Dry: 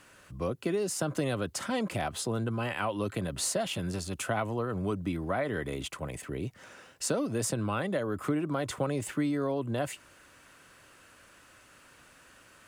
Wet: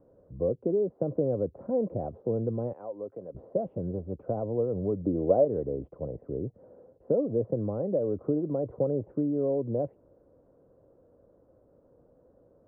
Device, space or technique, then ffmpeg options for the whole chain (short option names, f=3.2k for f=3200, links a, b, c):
under water: -filter_complex "[0:a]asettb=1/sr,asplit=3[a][b][c];[a]atrim=end=2.734[d];[b]atrim=start=2.73:end=3.35,asetpts=PTS-STARTPTS,afade=t=in:d=0.004:c=qsin,afade=t=out:st=0.616:d=0.004:c=qsin,highpass=f=1.1k:p=1[e];[c]atrim=start=3.346[f];[d][e]acrossfade=d=0.004:c1=hsin:c2=qsin[g];[g][f]acrossfade=d=0.004:c1=qsin:c2=hsin,lowpass=f=640:w=0.5412,lowpass=f=640:w=1.3066,equalizer=f=490:t=o:w=0.49:g=9,asettb=1/sr,asplit=3[h][i][j];[h]atrim=end=5.044[k];[i]atrim=start=5.04:end=5.45,asetpts=PTS-STARTPTS,afade=t=in:d=0.004:c=qsin,afade=t=out:st=0.406:d=0.004:c=qsin,equalizer=f=530:t=o:w=1.7:g=8.5[l];[j]atrim=start=5.446[m];[k][l]acrossfade=d=0.004:c1=hsin:c2=qsin[n];[n][m]acrossfade=d=0.004:c1=qsin:c2=hsin"